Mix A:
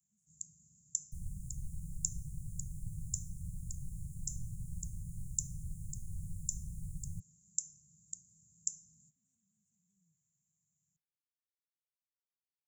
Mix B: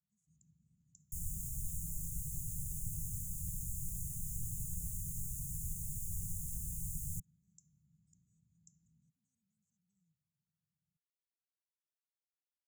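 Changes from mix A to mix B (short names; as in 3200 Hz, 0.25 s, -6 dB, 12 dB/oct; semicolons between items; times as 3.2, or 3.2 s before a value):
first sound: add polynomial smoothing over 65 samples; second sound: remove running mean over 7 samples; reverb: off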